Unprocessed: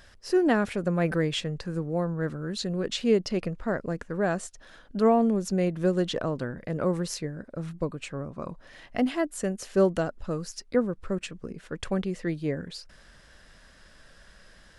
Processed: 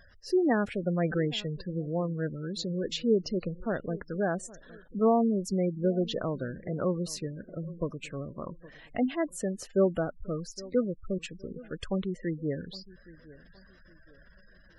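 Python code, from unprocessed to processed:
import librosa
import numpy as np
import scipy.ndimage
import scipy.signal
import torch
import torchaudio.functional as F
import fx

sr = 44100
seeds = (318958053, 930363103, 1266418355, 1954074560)

y = fx.echo_feedback(x, sr, ms=816, feedback_pct=34, wet_db=-20.0)
y = fx.spec_gate(y, sr, threshold_db=-20, keep='strong')
y = y * librosa.db_to_amplitude(-2.5)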